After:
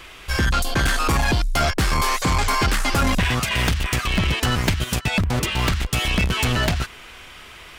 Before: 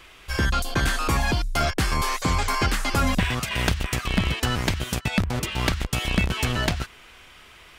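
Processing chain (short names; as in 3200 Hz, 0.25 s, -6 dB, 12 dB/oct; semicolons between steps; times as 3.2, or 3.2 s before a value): soft clip -21.5 dBFS, distortion -11 dB; 4.44–4.92 transient shaper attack +5 dB, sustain -5 dB; gain +7 dB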